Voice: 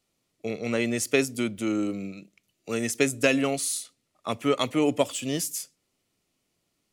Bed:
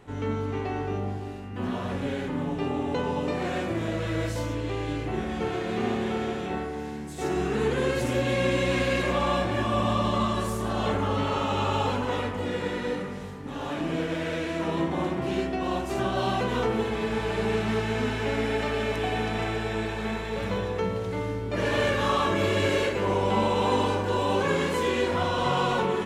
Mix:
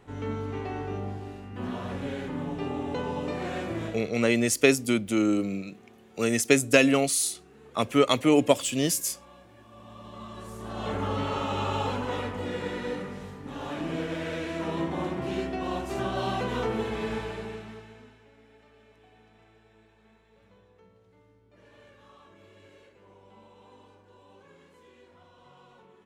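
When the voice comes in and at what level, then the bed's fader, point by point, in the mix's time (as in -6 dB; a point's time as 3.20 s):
3.50 s, +3.0 dB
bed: 3.86 s -3.5 dB
4.19 s -27 dB
9.65 s -27 dB
11.03 s -3 dB
17.12 s -3 dB
18.30 s -30.5 dB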